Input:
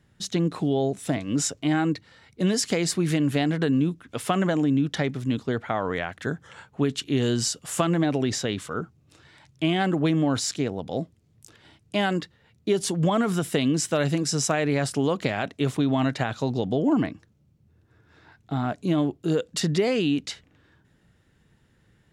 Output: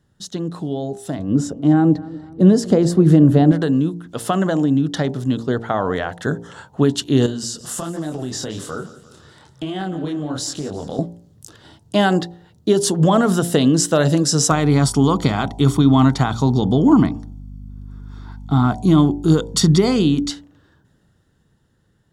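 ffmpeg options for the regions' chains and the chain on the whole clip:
-filter_complex "[0:a]asettb=1/sr,asplit=3[a][b][c];[a]atrim=end=1.194[d];[b]atrim=start=1.19:end=3.52,asetpts=PTS-STARTPTS,afade=t=in:d=0.004:c=qsin,afade=t=out:st=2.326:d=0.004:c=qsin,tiltshelf=f=1.2k:g=9,asplit=2[e][f];[f]adelay=244,lowpass=f=2.9k:p=1,volume=-19.5dB,asplit=2[g][h];[h]adelay=244,lowpass=f=2.9k:p=1,volume=0.46,asplit=2[i][j];[j]adelay=244,lowpass=f=2.9k:p=1,volume=0.46,asplit=2[k][l];[l]adelay=244,lowpass=f=2.9k:p=1,volume=0.46[m];[e][g][i][k][m]amix=inputs=5:normalize=0,atrim=end_sample=102753[n];[c]atrim=start=3.516[o];[d][n]acrossfade=d=0.004:c1=hsin:c2=qsin[p];[p][o]acrossfade=d=0.004:c1=qsin:c2=hsin,asettb=1/sr,asplit=3[q][r][s];[q]atrim=end=7.264[t];[r]atrim=start=7.26:end=10.99,asetpts=PTS-STARTPTS,afade=t=in:d=0.004:c=qsin,afade=t=out:st=3.726:d=0.004:c=qsin,flanger=delay=20:depth=7.8:speed=1.2,acompressor=threshold=-32dB:ratio=6:attack=3.2:release=140:knee=1:detection=peak,aecho=1:1:173|346|519|692|865:0.141|0.0805|0.0459|0.0262|0.0149,atrim=end_sample=164493[u];[s]atrim=start=10.986[v];[t][u]acrossfade=d=0.004:c1=hsin:c2=qsin[w];[w][v]acrossfade=d=0.004:c1=qsin:c2=hsin,asettb=1/sr,asplit=3[x][y][z];[x]atrim=end=14.504[aa];[y]atrim=start=14.5:end=20.3,asetpts=PTS-STARTPTS,afade=t=in:d=0.004:c=qsin,afade=t=out:st=5.796:d=0.004:c=qsin,aecho=1:1:0.9:0.64,atrim=end_sample=255780,aeval=exprs='val(0)+0.00794*(sin(2*PI*50*n/s)+sin(2*PI*2*50*n/s)/2+sin(2*PI*3*50*n/s)/3+sin(2*PI*4*50*n/s)/4+sin(2*PI*5*50*n/s)/5)':c=same[ab];[z]atrim=start=20.296[ac];[aa][ab]acrossfade=d=0.004:c1=hsin:c2=qsin[ad];[ad][ac]acrossfade=d=0.004:c1=qsin:c2=hsin,equalizer=f=2.3k:t=o:w=0.44:g=-14.5,bandreject=f=57.58:t=h:w=4,bandreject=f=115.16:t=h:w=4,bandreject=f=172.74:t=h:w=4,bandreject=f=230.32:t=h:w=4,bandreject=f=287.9:t=h:w=4,bandreject=f=345.48:t=h:w=4,bandreject=f=403.06:t=h:w=4,bandreject=f=460.64:t=h:w=4,bandreject=f=518.22:t=h:w=4,bandreject=f=575.8:t=h:w=4,bandreject=f=633.38:t=h:w=4,bandreject=f=690.96:t=h:w=4,bandreject=f=748.54:t=h:w=4,bandreject=f=806.12:t=h:w=4,bandreject=f=863.7:t=h:w=4,bandreject=f=921.28:t=h:w=4,bandreject=f=978.86:t=h:w=4,dynaudnorm=f=300:g=13:m=11.5dB"

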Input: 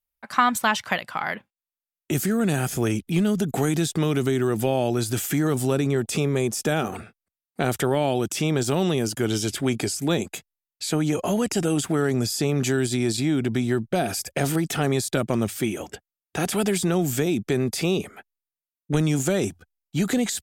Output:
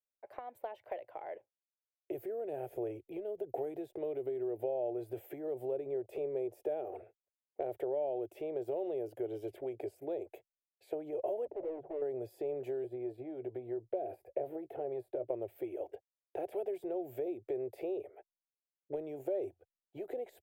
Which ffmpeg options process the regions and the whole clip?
-filter_complex "[0:a]asettb=1/sr,asplit=3[a][b][c];[a]atrim=end=11.454[d];[b]atrim=start=11.45:end=12.02,asetpts=PTS-STARTPTS,afade=t=in:d=0.004:c=qsin,afade=t=out:st=0.566:d=0.004:c=qsin,lowpass=f=680:t=q:w=1.9,bandreject=f=50:t=h:w=6,bandreject=f=100:t=h:w=6,bandreject=f=150:t=h:w=6,bandreject=f=200:t=h:w=6,bandreject=f=250:t=h:w=6,volume=28.5dB,asoftclip=hard,volume=-28.5dB[e];[c]atrim=start=12.016[f];[d][e]acrossfade=d=0.004:c1=hsin:c2=qsin[g];[g][f]acrossfade=d=0.004:c1=qsin:c2=hsin,asettb=1/sr,asplit=3[h][i][j];[h]atrim=end=12.844[k];[i]atrim=start=12.84:end=15.29,asetpts=PTS-STARTPTS,afade=t=in:d=0.004:c=qsin,afade=t=out:st=2.446:d=0.004:c=qsin,equalizer=f=6.3k:t=o:w=0.67:g=-6.5,acrossover=split=710|1600[l][m][n];[l]acompressor=threshold=-24dB:ratio=4[o];[m]acompressor=threshold=-39dB:ratio=4[p];[n]acompressor=threshold=-43dB:ratio=4[q];[o][p][q]amix=inputs=3:normalize=0,asplit=2[r][s];[s]adelay=16,volume=-13dB[t];[r][t]amix=inputs=2:normalize=0,atrim=end_sample=108045[u];[j]atrim=start=15.286[v];[k][u]acrossfade=d=0.004:c1=hsin:c2=qsin[w];[w][v]acrossfade=d=0.004:c1=qsin:c2=hsin,acrossover=split=180 3000:gain=0.141 1 0.0891[x][y][z];[x][y][z]amix=inputs=3:normalize=0,acompressor=threshold=-26dB:ratio=6,firequalizer=gain_entry='entry(110,0);entry(190,-30);entry(360,2);entry(590,7);entry(1200,-22);entry(2200,-13);entry(3400,-17);entry(6300,-18);entry(15000,10)':delay=0.05:min_phase=1,volume=-8dB"

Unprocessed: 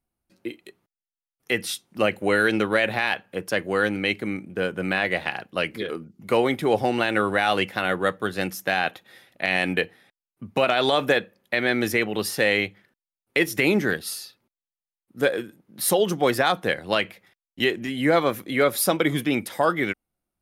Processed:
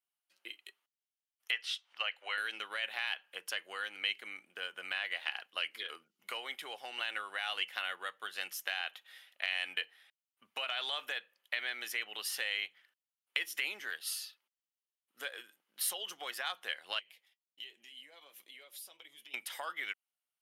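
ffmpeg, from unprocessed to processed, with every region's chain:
-filter_complex "[0:a]asettb=1/sr,asplit=3[a][b][c];[a]atrim=end=1.514[d];[b]atrim=start=1.51:end=2.38,asetpts=PTS-STARTPTS,afade=t=in:d=0.004:c=qsin,afade=t=out:st=0.866:d=0.004:c=qsin,acrossover=split=530 5400:gain=0.0708 1 0.0891[e][f][g];[e][f][g]amix=inputs=3:normalize=0,acompressor=mode=upward:threshold=-44dB:ratio=2.5:attack=3.2:release=140:knee=2.83:detection=peak[h];[c]atrim=start=2.376[i];[d][h]acrossfade=d=0.004:c1=hsin:c2=qsin[j];[j][i]acrossfade=d=0.004:c1=qsin:c2=hsin,asettb=1/sr,asplit=3[k][l][m];[k]atrim=end=16.994[n];[l]atrim=start=16.99:end=19.34,asetpts=PTS-STARTPTS,afade=t=in:d=0.004:c=qsin,afade=t=out:st=2.346:d=0.004:c=qsin,equalizer=f=1.4k:t=o:w=1:g=-11.5,acompressor=threshold=-36dB:ratio=6:attack=3.2:release=140:knee=1:detection=peak,flanger=delay=4.7:depth=3.3:regen=-57:speed=1.3:shape=sinusoidal[o];[m]atrim=start=19.336[p];[n][o]acrossfade=d=0.004:c1=hsin:c2=qsin[q];[q][p]acrossfade=d=0.004:c1=qsin:c2=hsin,acompressor=threshold=-26dB:ratio=4,highpass=1.2k,equalizer=f=3k:t=o:w=0.25:g=9.5,volume=-5.5dB"

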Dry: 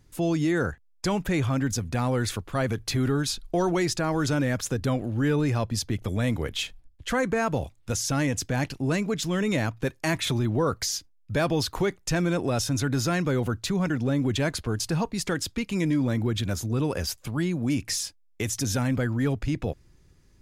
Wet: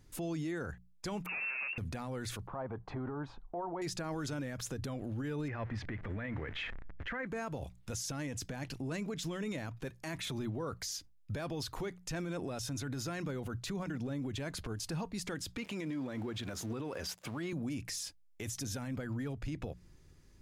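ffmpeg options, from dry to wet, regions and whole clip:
-filter_complex "[0:a]asettb=1/sr,asplit=3[a][b][c];[a]atrim=end=1.264[d];[b]atrim=start=1.26:end=1.78,asetpts=PTS-STARTPTS,afade=t=in:d=0.004:c=qsin,afade=t=out:st=0.516:d=0.004:c=qsin,volume=33dB,asoftclip=hard,volume=-33dB,lowpass=f=2.4k:t=q:w=0.5098,lowpass=f=2.4k:t=q:w=0.6013,lowpass=f=2.4k:t=q:w=0.9,lowpass=f=2.4k:t=q:w=2.563,afreqshift=-2800[e];[c]atrim=start=1.776[f];[d][e]acrossfade=d=0.004:c1=hsin:c2=qsin[g];[g][f]acrossfade=d=0.004:c1=qsin:c2=hsin,asettb=1/sr,asplit=3[h][i][j];[h]atrim=end=2.474[k];[i]atrim=start=2.47:end=3.82,asetpts=PTS-STARTPTS,afade=t=in:d=0.004:c=qsin,afade=t=out:st=1.346:d=0.004:c=qsin,lowpass=f=910:t=q:w=3.3,lowshelf=f=490:g=-7[l];[j]atrim=start=3.816[m];[k][l]acrossfade=d=0.004:c1=hsin:c2=qsin[n];[n][m]acrossfade=d=0.004:c1=qsin:c2=hsin,asettb=1/sr,asplit=3[o][p][q];[o]atrim=end=5.484[r];[p]atrim=start=5.48:end=7.27,asetpts=PTS-STARTPTS,afade=t=in:d=0.004:c=qsin,afade=t=out:st=1.786:d=0.004:c=qsin,aeval=exprs='val(0)+0.5*0.0126*sgn(val(0))':c=same,lowpass=f=1.9k:t=q:w=3.2[s];[q]atrim=start=7.266[t];[r][s]acrossfade=d=0.004:c1=hsin:c2=qsin[u];[u][t]acrossfade=d=0.004:c1=qsin:c2=hsin,asettb=1/sr,asplit=3[v][w][x];[v]atrim=end=15.574[y];[w]atrim=start=15.57:end=17.53,asetpts=PTS-STARTPTS,afade=t=in:d=0.004:c=qsin,afade=t=out:st=1.956:d=0.004:c=qsin,aeval=exprs='val(0)+0.5*0.00794*sgn(val(0))':c=same,highpass=f=350:p=1,aemphasis=mode=reproduction:type=cd[z];[x]atrim=start=17.526[aa];[y][z]acrossfade=d=0.004:c1=hsin:c2=qsin[ab];[ab][aa]acrossfade=d=0.004:c1=qsin:c2=hsin,bandreject=f=60:t=h:w=6,bandreject=f=120:t=h:w=6,bandreject=f=180:t=h:w=6,acompressor=threshold=-30dB:ratio=6,alimiter=level_in=5dB:limit=-24dB:level=0:latency=1:release=30,volume=-5dB,volume=-2dB"

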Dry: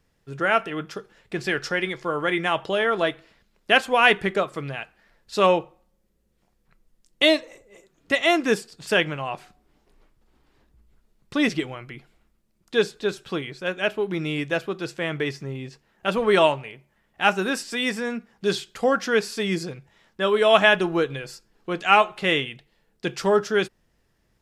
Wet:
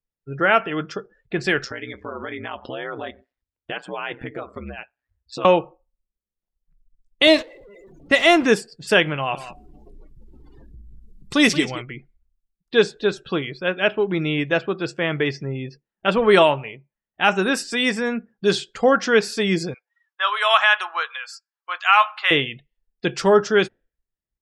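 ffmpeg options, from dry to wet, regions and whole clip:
-filter_complex "[0:a]asettb=1/sr,asplit=3[a][b][c];[a]atrim=end=1.644[d];[b]atrim=start=1.64:end=5.45,asetpts=PTS-STARTPTS,afade=t=in:d=0.004:c=qsin,afade=t=out:st=3.806:d=0.004:c=qsin,acompressor=threshold=-32dB:ratio=3:attack=3.2:release=140:knee=1:detection=peak,aeval=exprs='val(0)*sin(2*PI*63*n/s)':c=same[e];[c]atrim=start=5.446[f];[d][e]acrossfade=d=0.004:c1=hsin:c2=qsin[g];[g][f]acrossfade=d=0.004:c1=qsin:c2=hsin,asettb=1/sr,asplit=3[h][i][j];[h]atrim=end=7.274[k];[i]atrim=start=7.27:end=8.47,asetpts=PTS-STARTPTS,afade=t=in:d=0.004:c=qsin,afade=t=out:st=1.196:d=0.004:c=qsin,aeval=exprs='val(0)+0.5*0.0266*sgn(val(0))':c=same,agate=range=-12dB:threshold=-32dB:ratio=16:release=100:detection=peak[l];[j]atrim=start=8.466[m];[k][l]acrossfade=d=0.004:c1=hsin:c2=qsin[n];[n][m]acrossfade=d=0.004:c1=qsin:c2=hsin,asettb=1/sr,asplit=3[o][p][q];[o]atrim=end=9.144[r];[p]atrim=start=9.14:end=11.82,asetpts=PTS-STARTPTS,afade=t=in:d=0.004:c=qsin,afade=t=out:st=2.676:d=0.004:c=qsin,highshelf=f=4k:g=12,acompressor=mode=upward:threshold=-35dB:ratio=2.5:attack=3.2:release=140:knee=2.83:detection=peak,aecho=1:1:177:0.224,atrim=end_sample=118188[s];[q]atrim=start=11.816[t];[r][s]acrossfade=d=0.004:c1=hsin:c2=qsin[u];[u][t]acrossfade=d=0.004:c1=qsin:c2=hsin,asettb=1/sr,asplit=3[v][w][x];[v]atrim=end=19.744[y];[w]atrim=start=19.74:end=22.31,asetpts=PTS-STARTPTS,afade=t=in:d=0.004:c=qsin,afade=t=out:st=2.566:d=0.004:c=qsin,highpass=f=880:w=0.5412,highpass=f=880:w=1.3066,equalizer=f=1.2k:w=2.1:g=4.5[z];[x]atrim=start=22.306[aa];[y][z]acrossfade=d=0.004:c1=hsin:c2=qsin[ab];[ab][aa]acrossfade=d=0.004:c1=qsin:c2=hsin,afftdn=nr=32:nf=-46,alimiter=level_in=7dB:limit=-1dB:release=50:level=0:latency=1,volume=-2.5dB"

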